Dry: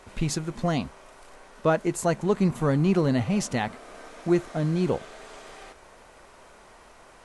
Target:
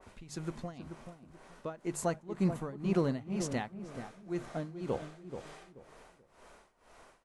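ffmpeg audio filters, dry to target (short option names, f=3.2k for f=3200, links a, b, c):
-filter_complex "[0:a]bandreject=f=50:t=h:w=6,bandreject=f=100:t=h:w=6,bandreject=f=150:t=h:w=6,tremolo=f=2:d=0.91,asplit=2[a][b];[b]adelay=432,lowpass=f=930:p=1,volume=-8dB,asplit=2[c][d];[d]adelay=432,lowpass=f=930:p=1,volume=0.29,asplit=2[e][f];[f]adelay=432,lowpass=f=930:p=1,volume=0.29[g];[c][e][g]amix=inputs=3:normalize=0[h];[a][h]amix=inputs=2:normalize=0,adynamicequalizer=threshold=0.00562:dfrequency=2100:dqfactor=0.7:tfrequency=2100:tqfactor=0.7:attack=5:release=100:ratio=0.375:range=2:mode=cutabove:tftype=highshelf,volume=-5.5dB"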